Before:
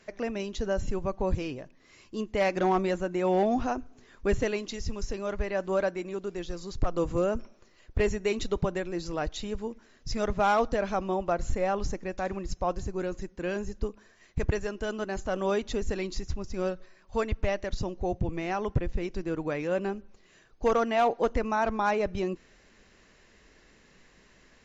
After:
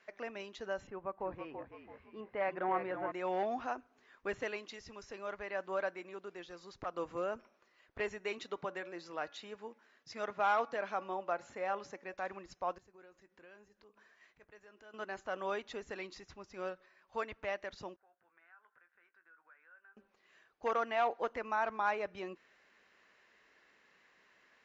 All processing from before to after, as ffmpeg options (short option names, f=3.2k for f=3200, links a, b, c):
-filter_complex "[0:a]asettb=1/sr,asplit=3[a][b][c];[a]atrim=end=0.874[d];[b]atrim=start=0.87:end=3.12,asetpts=PTS-STARTPTS,afade=t=in:d=0.004:c=qsin,afade=t=out:st=2.246:d=0.004:c=qsin,lowpass=1.8k,asplit=6[e][f][g][h][i][j];[f]adelay=332,afreqshift=-50,volume=-7dB[k];[g]adelay=664,afreqshift=-100,volume=-14.5dB[l];[h]adelay=996,afreqshift=-150,volume=-22.1dB[m];[i]adelay=1328,afreqshift=-200,volume=-29.6dB[n];[j]adelay=1660,afreqshift=-250,volume=-37.1dB[o];[e][k][l][m][n][o]amix=inputs=6:normalize=0,atrim=end_sample=99225[p];[c]atrim=start=3.116[q];[d][p]acrossfade=d=0.004:c1=hsin:c2=qsin[r];[r][q]acrossfade=d=0.004:c1=qsin:c2=hsin,asettb=1/sr,asplit=3[s][t][u];[s]atrim=end=8.384[v];[t]atrim=start=8.38:end=12.14,asetpts=PTS-STARTPTS,afade=t=in:d=0.004:c=qsin,afade=t=out:st=3.756:d=0.004:c=qsin,highpass=140,bandreject=f=283.1:t=h:w=4,bandreject=f=566.2:t=h:w=4,bandreject=f=849.3:t=h:w=4,bandreject=f=1.1324k:t=h:w=4,bandreject=f=1.4155k:t=h:w=4,bandreject=f=1.6986k:t=h:w=4,bandreject=f=1.9817k:t=h:w=4,bandreject=f=2.2648k:t=h:w=4,bandreject=f=2.5479k:t=h:w=4[w];[u]atrim=start=12.136[x];[v][w]acrossfade=d=0.004:c1=hsin:c2=qsin[y];[y][x]acrossfade=d=0.004:c1=qsin:c2=hsin,asettb=1/sr,asplit=3[z][aa][ab];[z]atrim=end=12.784[ac];[aa]atrim=start=12.78:end=14.94,asetpts=PTS-STARTPTS,afade=t=in:d=0.004:c=qsin,afade=t=out:st=2.156:d=0.004:c=qsin,acompressor=threshold=-45dB:ratio=5:attack=3.2:release=140:knee=1:detection=peak,asplit=2[ad][ae];[ae]adelay=19,volume=-14dB[af];[ad][af]amix=inputs=2:normalize=0,atrim=end_sample=95256[ag];[ab]atrim=start=14.936[ah];[ac][ag]acrossfade=d=0.004:c1=hsin:c2=qsin[ai];[ai][ah]acrossfade=d=0.004:c1=qsin:c2=hsin,asettb=1/sr,asplit=3[aj][ak][al];[aj]atrim=end=17.964[am];[ak]atrim=start=17.96:end=19.97,asetpts=PTS-STARTPTS,afade=t=in:d=0.004:c=qsin,afade=t=out:st=2.006:d=0.004:c=qsin,bandpass=f=1.5k:t=q:w=8.6,asplit=2[an][ao];[ao]adelay=18,volume=-10dB[ap];[an][ap]amix=inputs=2:normalize=0,atrim=end_sample=88641,acompressor=threshold=-59dB:ratio=2.5:attack=3.2:release=140:knee=1:detection=peak[aq];[al]atrim=start=19.966[ar];[am][aq]acrossfade=d=0.004:c1=hsin:c2=qsin[as];[as][ar]acrossfade=d=0.004:c1=qsin:c2=hsin,lowpass=1.5k,aderivative,volume=12.5dB"